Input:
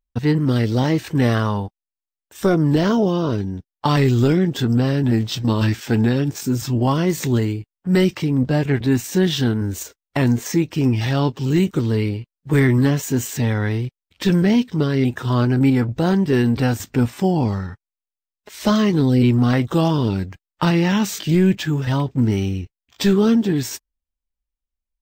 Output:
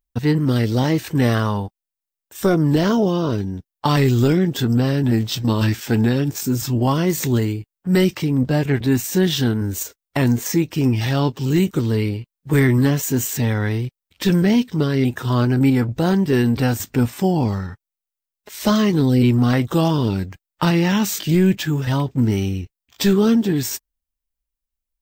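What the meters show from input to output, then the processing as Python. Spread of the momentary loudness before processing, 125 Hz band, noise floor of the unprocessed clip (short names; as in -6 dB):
8 LU, 0.0 dB, under -85 dBFS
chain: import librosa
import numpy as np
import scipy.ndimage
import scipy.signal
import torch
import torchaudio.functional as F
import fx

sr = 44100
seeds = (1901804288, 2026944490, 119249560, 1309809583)

y = fx.high_shelf(x, sr, hz=9300.0, db=9.5)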